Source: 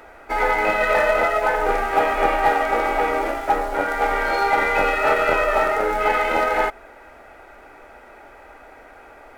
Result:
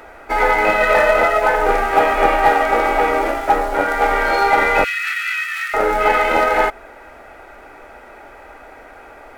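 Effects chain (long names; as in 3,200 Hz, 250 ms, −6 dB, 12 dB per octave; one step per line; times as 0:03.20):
0:04.84–0:05.74: Butterworth high-pass 1,700 Hz 36 dB per octave
level +4.5 dB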